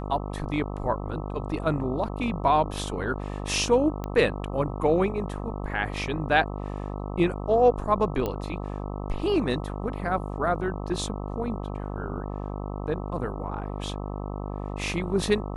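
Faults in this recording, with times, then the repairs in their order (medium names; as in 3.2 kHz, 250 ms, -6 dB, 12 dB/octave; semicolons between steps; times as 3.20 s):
buzz 50 Hz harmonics 26 -33 dBFS
4.04 s: pop -19 dBFS
8.26 s: pop -16 dBFS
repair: de-click; de-hum 50 Hz, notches 26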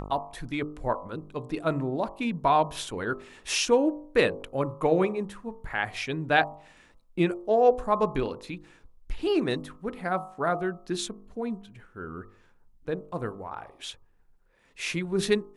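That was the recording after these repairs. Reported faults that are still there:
nothing left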